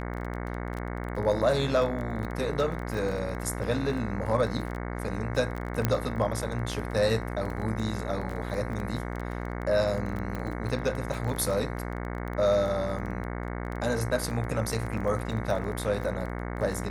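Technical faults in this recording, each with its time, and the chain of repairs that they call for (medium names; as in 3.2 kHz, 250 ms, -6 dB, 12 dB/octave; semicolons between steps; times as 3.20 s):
buzz 60 Hz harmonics 37 -34 dBFS
crackle 20 per s -32 dBFS
5.85 s: pop -10 dBFS
10.35 s: pop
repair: de-click; de-hum 60 Hz, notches 37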